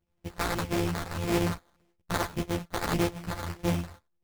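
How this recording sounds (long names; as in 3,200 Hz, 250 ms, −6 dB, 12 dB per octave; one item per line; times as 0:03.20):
a buzz of ramps at a fixed pitch in blocks of 256 samples
phaser sweep stages 2, 1.7 Hz, lowest notch 200–3,300 Hz
aliases and images of a low sample rate 2,800 Hz, jitter 20%
a shimmering, thickened sound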